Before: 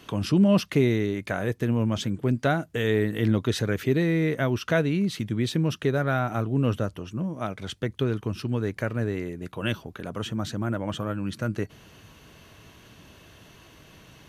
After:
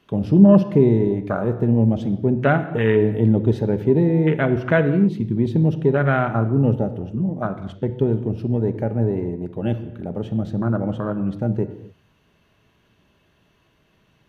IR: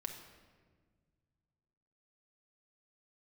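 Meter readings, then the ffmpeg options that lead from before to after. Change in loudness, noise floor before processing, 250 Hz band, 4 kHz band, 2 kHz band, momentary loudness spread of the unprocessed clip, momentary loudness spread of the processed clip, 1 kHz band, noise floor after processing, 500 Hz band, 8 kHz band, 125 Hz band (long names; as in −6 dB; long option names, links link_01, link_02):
+6.5 dB, −53 dBFS, +7.0 dB, can't be measured, +2.5 dB, 9 LU, 10 LU, +5.0 dB, −62 dBFS, +7.0 dB, below −15 dB, +7.0 dB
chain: -filter_complex "[0:a]afwtdn=0.0355,asplit=2[link_01][link_02];[1:a]atrim=start_sample=2205,afade=type=out:start_time=0.33:duration=0.01,atrim=end_sample=14994,lowpass=4400[link_03];[link_02][link_03]afir=irnorm=-1:irlink=0,volume=3.5dB[link_04];[link_01][link_04]amix=inputs=2:normalize=0"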